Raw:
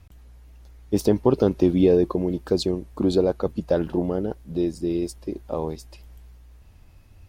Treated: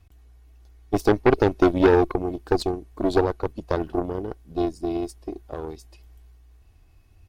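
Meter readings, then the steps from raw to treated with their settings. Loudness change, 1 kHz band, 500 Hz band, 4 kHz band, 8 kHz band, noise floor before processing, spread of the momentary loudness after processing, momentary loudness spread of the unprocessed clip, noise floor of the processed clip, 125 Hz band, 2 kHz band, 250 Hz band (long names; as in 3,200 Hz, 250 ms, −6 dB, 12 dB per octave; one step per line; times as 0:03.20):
0.0 dB, +8.0 dB, 0.0 dB, −2.0 dB, can't be measured, −50 dBFS, 17 LU, 11 LU, −55 dBFS, −2.0 dB, +11.5 dB, −2.0 dB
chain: comb filter 2.7 ms, depth 44%
harmonic generator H 3 −20 dB, 6 −12 dB, 7 −31 dB, 8 −19 dB, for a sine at −5.5 dBFS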